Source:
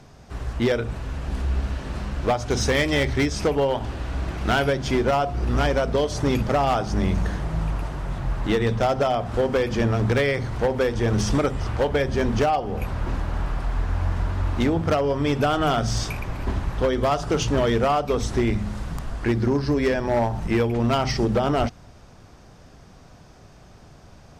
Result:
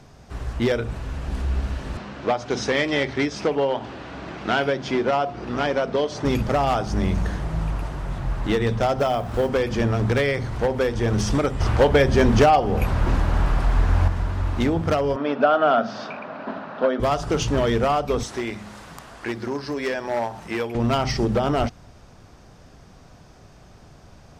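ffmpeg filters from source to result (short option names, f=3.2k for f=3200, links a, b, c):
-filter_complex "[0:a]asettb=1/sr,asplit=3[a][b][c];[a]atrim=end=1.974[d];[b]atrim=start=1.97:end=6.25,asetpts=PTS-STARTPTS,afade=t=in:d=0.004:c=qsin,afade=t=out:st=4.276:d=0.004:c=qsin,highpass=180,lowpass=5.1k[e];[c]atrim=start=6.246[f];[d][e]acrossfade=d=0.004:c1=hsin:c2=qsin[g];[g][f]acrossfade=d=0.004:c1=qsin:c2=hsin,asplit=3[h][i][j];[h]afade=t=out:st=8.98:d=0.02[k];[i]acrusher=bits=8:mode=log:mix=0:aa=0.000001,afade=t=in:st=8.98:d=0.02,afade=t=out:st=9.48:d=0.02[l];[j]afade=t=in:st=9.48:d=0.02[m];[k][l][m]amix=inputs=3:normalize=0,asettb=1/sr,asplit=3[n][o][p];[n]atrim=end=11.604[q];[o]atrim=start=11.6:end=14.08,asetpts=PTS-STARTPTS,afade=t=in:d=0.004:c=qsin,afade=t=out:st=2.476:d=0.004:c=qsin,acontrast=52[r];[p]atrim=start=14.076[s];[q][r]acrossfade=d=0.004:c1=hsin:c2=qsin[t];[t][s]acrossfade=d=0.004:c1=qsin:c2=hsin,asettb=1/sr,asplit=3[u][v][w];[u]atrim=end=15.164[x];[v]atrim=start=15.16:end=17,asetpts=PTS-STARTPTS,afade=t=in:d=0.004:c=qsin,afade=t=out:st=1.836:d=0.004:c=qsin,highpass=f=220:w=0.5412,highpass=f=220:w=1.3066,equalizer=f=230:t=q:w=4:g=5,equalizer=f=350:t=q:w=4:g=-8,equalizer=f=630:t=q:w=4:g=9,equalizer=f=1.4k:t=q:w=4:g=6,equalizer=f=2.1k:t=q:w=4:g=-6,equalizer=f=3.3k:t=q:w=4:g=-5,lowpass=f=3.8k:w=0.5412,lowpass=f=3.8k:w=1.3066[y];[w]atrim=start=16.996[z];[x][y]acrossfade=d=0.004:c1=hsin:c2=qsin[aa];[aa][z]acrossfade=d=0.004:c1=qsin:c2=hsin,asettb=1/sr,asplit=3[ab][ac][ad];[ab]atrim=end=18.234[ae];[ac]atrim=start=18.23:end=20.75,asetpts=PTS-STARTPTS,afade=t=in:d=0.004:c=qsin,afade=t=out:st=2.516:d=0.004:c=qsin,highpass=f=570:p=1[af];[ad]atrim=start=20.746[ag];[ae][af]acrossfade=d=0.004:c1=hsin:c2=qsin[ah];[ah][ag]acrossfade=d=0.004:c1=qsin:c2=hsin"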